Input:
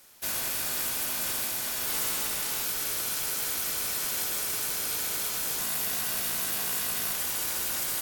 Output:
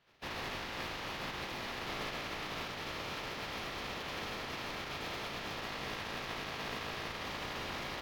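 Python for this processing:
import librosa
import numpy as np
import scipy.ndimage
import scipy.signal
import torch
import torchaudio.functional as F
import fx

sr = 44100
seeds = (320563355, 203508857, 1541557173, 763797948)

p1 = fx.notch(x, sr, hz=1500.0, q=9.5)
p2 = fx.spec_gate(p1, sr, threshold_db=-10, keep='weak')
p3 = fx.quant_dither(p2, sr, seeds[0], bits=8, dither='none')
p4 = p2 + (p3 * 10.0 ** (-10.0 / 20.0))
y = fx.air_absorb(p4, sr, metres=290.0)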